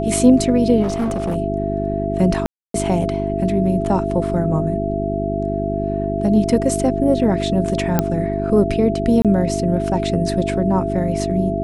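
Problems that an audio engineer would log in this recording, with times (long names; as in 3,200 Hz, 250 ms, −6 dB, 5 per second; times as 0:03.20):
mains hum 50 Hz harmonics 8 −23 dBFS
whistle 670 Hz −23 dBFS
0:00.82–0:01.36: clipping −16.5 dBFS
0:02.46–0:02.74: drop-out 283 ms
0:07.99: click −3 dBFS
0:09.22–0:09.25: drop-out 27 ms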